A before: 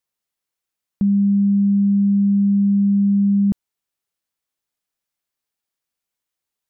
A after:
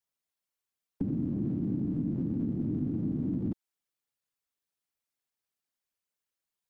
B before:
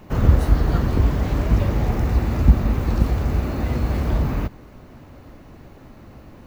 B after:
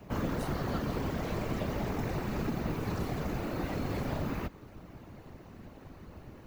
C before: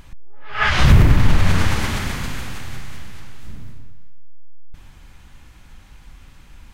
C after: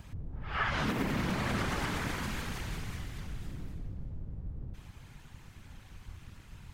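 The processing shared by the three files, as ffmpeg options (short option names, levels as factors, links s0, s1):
-filter_complex "[0:a]afftfilt=real='hypot(re,im)*cos(2*PI*random(0))':imag='hypot(re,im)*sin(2*PI*random(1))':win_size=512:overlap=0.75,afftfilt=real='re*lt(hypot(re,im),1)':imag='im*lt(hypot(re,im),1)':win_size=1024:overlap=0.75,acrossover=split=210|1800[s0][s1][s2];[s0]acompressor=threshold=0.0141:ratio=4[s3];[s1]acompressor=threshold=0.0251:ratio=4[s4];[s2]acompressor=threshold=0.00794:ratio=4[s5];[s3][s4][s5]amix=inputs=3:normalize=0"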